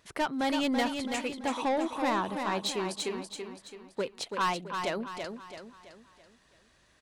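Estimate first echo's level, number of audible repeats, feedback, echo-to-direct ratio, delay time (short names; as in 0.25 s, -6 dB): -6.0 dB, 4, 43%, -5.0 dB, 0.332 s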